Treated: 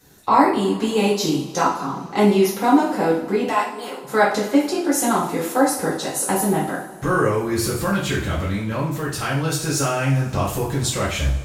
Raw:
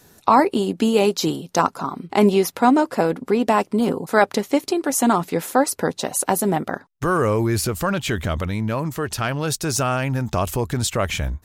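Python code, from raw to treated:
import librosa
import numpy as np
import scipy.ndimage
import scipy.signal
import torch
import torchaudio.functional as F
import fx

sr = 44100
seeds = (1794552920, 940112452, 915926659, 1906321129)

y = fx.highpass(x, sr, hz=730.0, slope=12, at=(3.48, 4.04), fade=0.02)
y = fx.rev_double_slope(y, sr, seeds[0], early_s=0.48, late_s=2.8, knee_db=-20, drr_db=-8.0)
y = y * 10.0 ** (-8.0 / 20.0)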